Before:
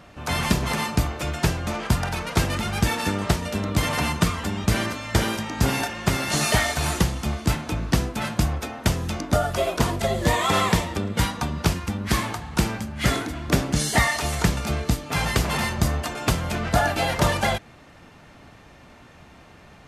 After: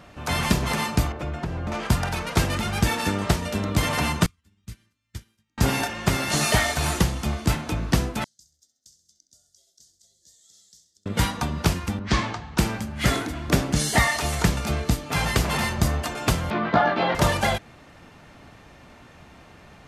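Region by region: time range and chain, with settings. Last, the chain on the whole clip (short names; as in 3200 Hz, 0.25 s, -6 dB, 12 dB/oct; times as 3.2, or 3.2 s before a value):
1.12–1.72 LPF 1100 Hz 6 dB/oct + compressor 5:1, threshold -24 dBFS
4.26–5.58 passive tone stack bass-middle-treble 6-0-2 + upward expander 2.5:1, over -48 dBFS
8.24–11.06 inverse Chebyshev high-pass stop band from 2700 Hz, stop band 50 dB + air absorption 200 m + feedback echo 66 ms, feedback 50%, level -12.5 dB
11.99–12.58 LPF 6200 Hz 24 dB/oct + three-band expander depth 40%
16.5–17.15 speaker cabinet 190–3600 Hz, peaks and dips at 210 Hz +6 dB, 390 Hz +5 dB, 1100 Hz +6 dB, 2700 Hz -5 dB + doubler 17 ms -5 dB
whole clip: dry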